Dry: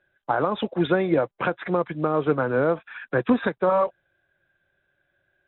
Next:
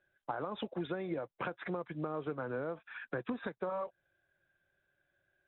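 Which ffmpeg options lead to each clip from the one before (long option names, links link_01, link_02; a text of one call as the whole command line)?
ffmpeg -i in.wav -af "acompressor=threshold=-27dB:ratio=6,volume=-7.5dB" out.wav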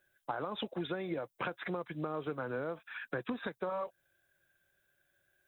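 ffmpeg -i in.wav -af "crystalizer=i=3:c=0" out.wav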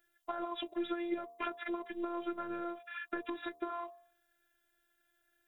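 ffmpeg -i in.wav -af "afftfilt=real='hypot(re,im)*cos(PI*b)':imag='0':win_size=512:overlap=0.75,bandreject=frequency=76.88:width_type=h:width=4,bandreject=frequency=153.76:width_type=h:width=4,bandreject=frequency=230.64:width_type=h:width=4,bandreject=frequency=307.52:width_type=h:width=4,bandreject=frequency=384.4:width_type=h:width=4,bandreject=frequency=461.28:width_type=h:width=4,bandreject=frequency=538.16:width_type=h:width=4,bandreject=frequency=615.04:width_type=h:width=4,bandreject=frequency=691.92:width_type=h:width=4,bandreject=frequency=768.8:width_type=h:width=4,bandreject=frequency=845.68:width_type=h:width=4,bandreject=frequency=922.56:width_type=h:width=4,bandreject=frequency=999.44:width_type=h:width=4,bandreject=frequency=1076.32:width_type=h:width=4,bandreject=frequency=1153.2:width_type=h:width=4,bandreject=frequency=1230.08:width_type=h:width=4,volume=3.5dB" out.wav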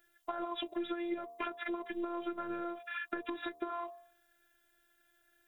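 ffmpeg -i in.wav -af "acompressor=threshold=-41dB:ratio=2.5,volume=5dB" out.wav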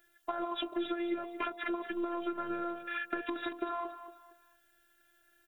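ffmpeg -i in.wav -af "aecho=1:1:230|460|690:0.266|0.0798|0.0239,volume=2.5dB" out.wav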